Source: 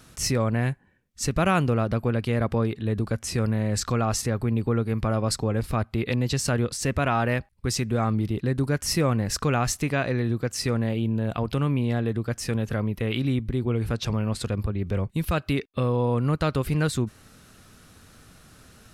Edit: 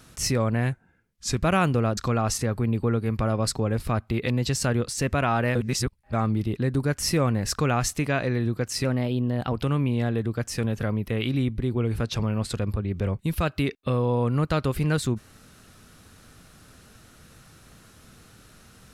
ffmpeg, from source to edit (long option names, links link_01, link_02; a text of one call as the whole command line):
ffmpeg -i in.wav -filter_complex "[0:a]asplit=8[link_01][link_02][link_03][link_04][link_05][link_06][link_07][link_08];[link_01]atrim=end=0.724[link_09];[link_02]atrim=start=0.72:end=1.35,asetpts=PTS-STARTPTS,asetrate=40131,aresample=44100[link_10];[link_03]atrim=start=1.346:end=1.912[link_11];[link_04]atrim=start=3.808:end=7.392[link_12];[link_05]atrim=start=7.388:end=7.972,asetpts=PTS-STARTPTS,areverse[link_13];[link_06]atrim=start=7.968:end=10.684[link_14];[link_07]atrim=start=10.68:end=11.42,asetpts=PTS-STARTPTS,asetrate=48510,aresample=44100,atrim=end_sample=29667,asetpts=PTS-STARTPTS[link_15];[link_08]atrim=start=11.416[link_16];[link_09][link_10]acrossfade=duration=0.004:curve1=hsin:curve2=hsin[link_17];[link_17][link_11]acrossfade=duration=0.004:curve1=hsin:curve2=hsin[link_18];[link_18][link_12]acrossfade=duration=0.004:curve1=hsin:curve2=hsin[link_19];[link_19][link_13]acrossfade=duration=0.004:curve1=hsin:curve2=hsin[link_20];[link_20][link_14]acrossfade=duration=0.004:curve1=hsin:curve2=hsin[link_21];[link_21][link_15]acrossfade=duration=0.004:curve1=hsin:curve2=hsin[link_22];[link_22][link_16]acrossfade=duration=0.004:curve1=hsin:curve2=hsin" out.wav